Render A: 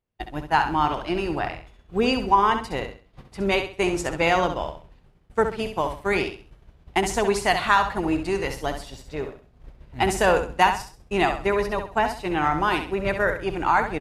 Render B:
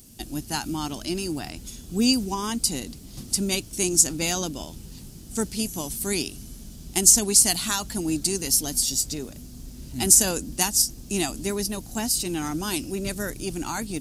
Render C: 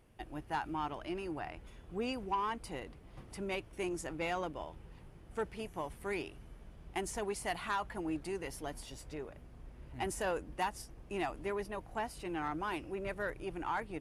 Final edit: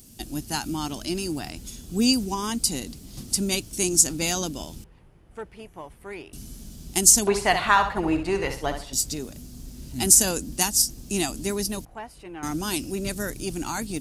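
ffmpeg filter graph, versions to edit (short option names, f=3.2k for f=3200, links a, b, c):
-filter_complex "[2:a]asplit=2[a][b];[1:a]asplit=4[c][d][e][f];[c]atrim=end=4.842[g];[a]atrim=start=4.838:end=6.332[h];[d]atrim=start=6.328:end=7.272[i];[0:a]atrim=start=7.268:end=8.932[j];[e]atrim=start=8.928:end=11.852[k];[b]atrim=start=11.848:end=12.432[l];[f]atrim=start=12.428[m];[g][h]acrossfade=d=0.004:c1=hsin:c2=hsin[n];[n][i]acrossfade=d=0.004:c1=hsin:c2=hsin[o];[o][j]acrossfade=d=0.004:c1=hsin:c2=hsin[p];[p][k]acrossfade=d=0.004:c1=hsin:c2=hsin[q];[q][l]acrossfade=d=0.004:c1=hsin:c2=hsin[r];[r][m]acrossfade=d=0.004:c1=hsin:c2=hsin"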